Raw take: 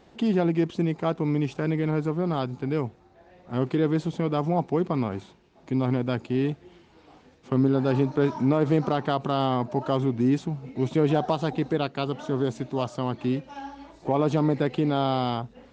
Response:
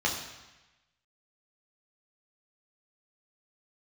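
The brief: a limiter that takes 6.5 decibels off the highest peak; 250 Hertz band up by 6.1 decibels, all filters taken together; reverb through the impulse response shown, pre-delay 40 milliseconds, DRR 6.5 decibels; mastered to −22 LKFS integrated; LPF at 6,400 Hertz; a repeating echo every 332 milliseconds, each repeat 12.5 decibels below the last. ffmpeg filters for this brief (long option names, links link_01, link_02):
-filter_complex "[0:a]lowpass=6400,equalizer=frequency=250:width_type=o:gain=7.5,alimiter=limit=-13.5dB:level=0:latency=1,aecho=1:1:332|664|996:0.237|0.0569|0.0137,asplit=2[link_01][link_02];[1:a]atrim=start_sample=2205,adelay=40[link_03];[link_02][link_03]afir=irnorm=-1:irlink=0,volume=-16.5dB[link_04];[link_01][link_04]amix=inputs=2:normalize=0,volume=1.5dB"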